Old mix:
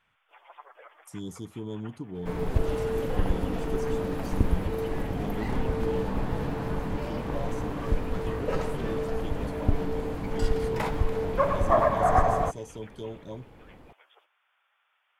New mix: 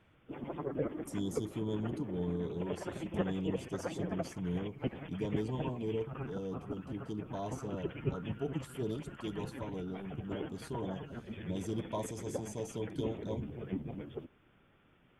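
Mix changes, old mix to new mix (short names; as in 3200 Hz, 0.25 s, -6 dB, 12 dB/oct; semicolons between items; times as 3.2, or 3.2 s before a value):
first sound: remove inverse Chebyshev high-pass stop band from 240 Hz, stop band 60 dB; second sound: muted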